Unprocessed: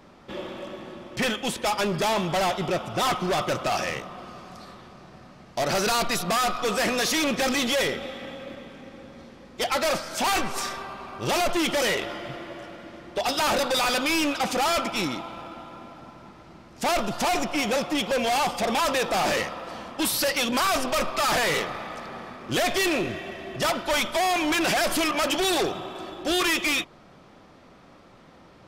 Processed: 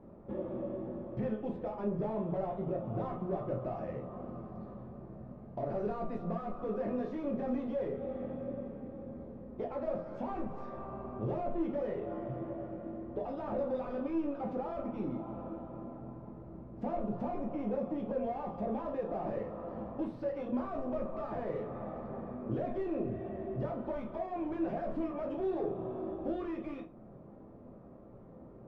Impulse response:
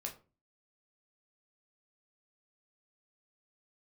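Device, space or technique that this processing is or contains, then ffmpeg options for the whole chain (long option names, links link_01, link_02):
television next door: -filter_complex "[0:a]acompressor=threshold=-32dB:ratio=5,lowpass=550[link_01];[1:a]atrim=start_sample=2205[link_02];[link_01][link_02]afir=irnorm=-1:irlink=0,volume=2.5dB"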